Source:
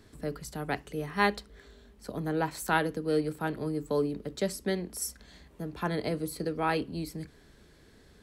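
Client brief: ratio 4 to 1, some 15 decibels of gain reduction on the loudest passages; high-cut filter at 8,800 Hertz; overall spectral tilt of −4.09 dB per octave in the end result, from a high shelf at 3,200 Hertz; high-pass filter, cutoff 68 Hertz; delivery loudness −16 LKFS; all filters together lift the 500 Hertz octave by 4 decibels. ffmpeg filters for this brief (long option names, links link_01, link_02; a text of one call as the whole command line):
ffmpeg -i in.wav -af "highpass=68,lowpass=8800,equalizer=frequency=500:width_type=o:gain=4.5,highshelf=frequency=3200:gain=8.5,acompressor=threshold=-38dB:ratio=4,volume=25dB" out.wav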